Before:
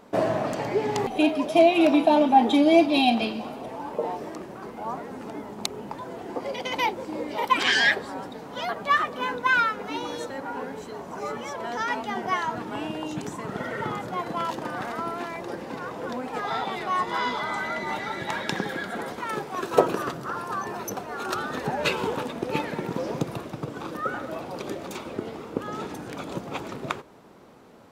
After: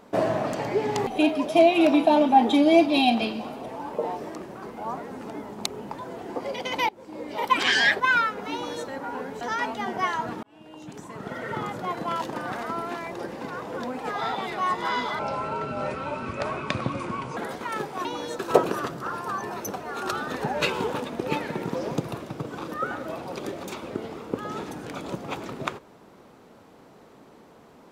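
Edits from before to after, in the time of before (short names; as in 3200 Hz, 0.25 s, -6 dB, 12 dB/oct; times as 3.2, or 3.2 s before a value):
6.89–7.47 fade in, from -20.5 dB
8–9.42 cut
9.95–10.29 copy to 19.62
10.83–11.7 cut
12.72–13.98 fade in linear
17.48–18.94 speed 67%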